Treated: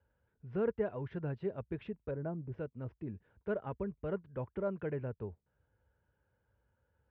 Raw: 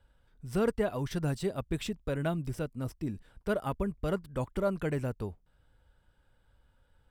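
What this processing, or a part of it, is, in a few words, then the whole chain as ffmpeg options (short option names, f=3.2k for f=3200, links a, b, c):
bass cabinet: -filter_complex "[0:a]asettb=1/sr,asplit=3[a][b][c];[a]atrim=end=2.114[d];[b]atrim=start=2.11:end=2.52,asetpts=PTS-STARTPTS,afade=t=in:d=0.004:c=qsin,afade=t=out:st=0.406:d=0.004:c=qsin,lowpass=1k[e];[c]atrim=start=2.516[f];[d][e]acrossfade=d=0.004:c1=hsin:c2=qsin[g];[g][f]acrossfade=d=0.004:c1=qsin:c2=hsin,highpass=f=65:w=0.5412,highpass=f=65:w=1.3066,equalizer=f=160:t=q:w=4:g=-3,equalizer=f=270:t=q:w=4:g=-5,equalizer=f=430:t=q:w=4:g=3,equalizer=f=730:t=q:w=4:g=-4,equalizer=f=1.2k:t=q:w=4:g=-6,equalizer=f=2k:t=q:w=4:g=-4,lowpass=f=2.2k:w=0.5412,lowpass=f=2.2k:w=1.3066,volume=-5dB"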